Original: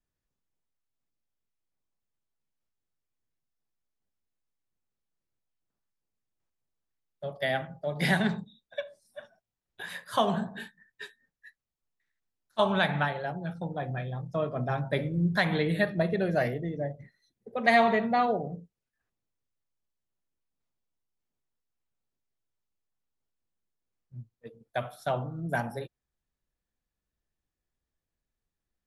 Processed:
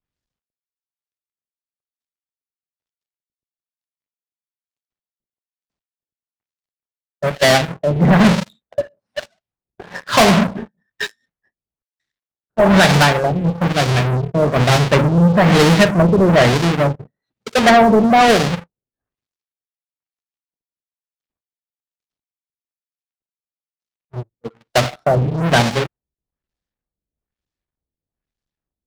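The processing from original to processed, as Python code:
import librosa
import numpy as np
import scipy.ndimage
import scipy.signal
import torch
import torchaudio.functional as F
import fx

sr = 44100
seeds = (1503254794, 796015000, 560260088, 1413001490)

p1 = fx.halfwave_hold(x, sr)
p2 = fx.highpass(p1, sr, hz=43.0, slope=6)
p3 = fx.high_shelf(p2, sr, hz=3500.0, db=10.0)
p4 = (np.mod(10.0 ** (14.5 / 20.0) * p3 + 1.0, 2.0) - 1.0) / 10.0 ** (14.5 / 20.0)
p5 = p3 + F.gain(torch.from_numpy(p4), -9.5).numpy()
p6 = fx.filter_lfo_lowpass(p5, sr, shape='sine', hz=1.1, low_hz=460.0, high_hz=5400.0, q=0.88)
y = fx.leveller(p6, sr, passes=3)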